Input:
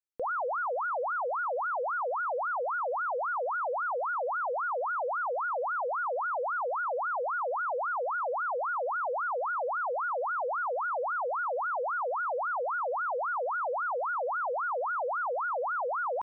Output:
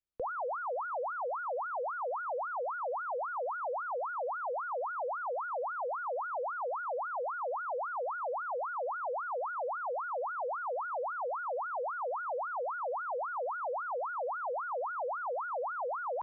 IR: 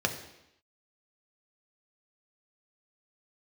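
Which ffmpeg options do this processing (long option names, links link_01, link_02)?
-filter_complex "[0:a]acrossover=split=330|980[link_01][link_02][link_03];[link_01]acompressor=threshold=-58dB:ratio=4[link_04];[link_02]acompressor=threshold=-34dB:ratio=4[link_05];[link_03]acompressor=threshold=-39dB:ratio=4[link_06];[link_04][link_05][link_06]amix=inputs=3:normalize=0,aemphasis=mode=reproduction:type=bsi,volume=-2dB"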